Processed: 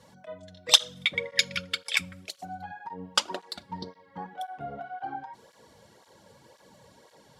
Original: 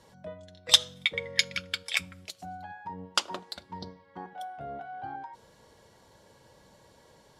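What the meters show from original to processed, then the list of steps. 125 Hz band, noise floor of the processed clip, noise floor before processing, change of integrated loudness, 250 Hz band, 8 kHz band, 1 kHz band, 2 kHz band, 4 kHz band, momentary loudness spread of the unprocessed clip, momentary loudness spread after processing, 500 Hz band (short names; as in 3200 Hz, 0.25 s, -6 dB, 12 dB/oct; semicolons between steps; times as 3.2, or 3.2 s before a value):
+1.0 dB, -59 dBFS, -60 dBFS, +1.5 dB, +2.5 dB, +2.5 dB, +2.0 dB, +1.5 dB, +1.5 dB, 23 LU, 22 LU, +2.0 dB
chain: tape flanging out of phase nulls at 1.9 Hz, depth 3.2 ms; gain +5 dB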